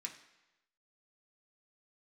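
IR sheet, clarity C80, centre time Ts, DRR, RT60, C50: 12.0 dB, 17 ms, 0.0 dB, 1.0 s, 9.5 dB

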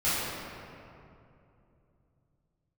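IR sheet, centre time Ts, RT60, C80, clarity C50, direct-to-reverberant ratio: 169 ms, 2.8 s, −1.5 dB, −4.0 dB, −14.0 dB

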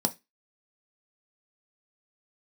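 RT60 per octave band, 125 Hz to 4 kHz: 0.25, 0.25, 0.20, 0.20, 0.25, 0.20 seconds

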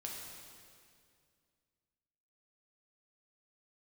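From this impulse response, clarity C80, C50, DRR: 2.5 dB, 0.5 dB, −2.0 dB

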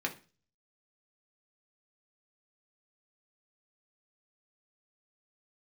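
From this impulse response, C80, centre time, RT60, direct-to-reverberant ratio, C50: 20.5 dB, 10 ms, 0.35 s, 1.0 dB, 14.5 dB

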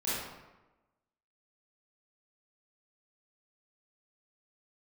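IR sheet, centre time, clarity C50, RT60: 92 ms, −3.5 dB, 1.1 s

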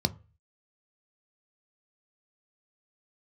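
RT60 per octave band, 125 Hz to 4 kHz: 0.50, 0.30, 0.35, 0.35, 0.35, 0.25 seconds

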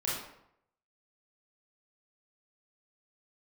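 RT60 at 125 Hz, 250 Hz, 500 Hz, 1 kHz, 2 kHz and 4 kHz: 0.80, 0.70, 0.75, 0.75, 0.65, 0.50 seconds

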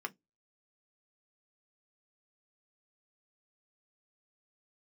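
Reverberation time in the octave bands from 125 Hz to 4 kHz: 0.25, 0.20, 0.20, 0.15, 0.10, 0.15 seconds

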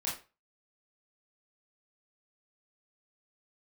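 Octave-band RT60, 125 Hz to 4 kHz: 0.35, 0.30, 0.30, 0.30, 0.30, 0.25 seconds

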